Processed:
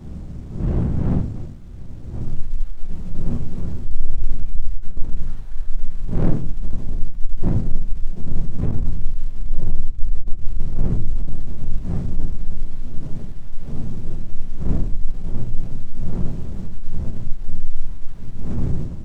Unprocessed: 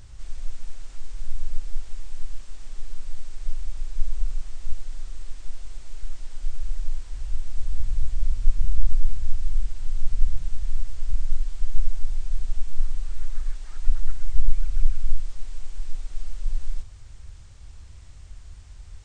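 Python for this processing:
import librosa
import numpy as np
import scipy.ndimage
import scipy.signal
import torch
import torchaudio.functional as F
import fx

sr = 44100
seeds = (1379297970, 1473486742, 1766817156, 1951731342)

y = x[::-1].copy()
y = fx.dmg_wind(y, sr, seeds[0], corner_hz=140.0, level_db=-26.0)
y = 10.0 ** (-15.5 / 20.0) * np.tanh(y / 10.0 ** (-15.5 / 20.0))
y = fx.room_shoebox(y, sr, seeds[1], volume_m3=210.0, walls='furnished', distance_m=1.1)
y = fx.running_max(y, sr, window=17)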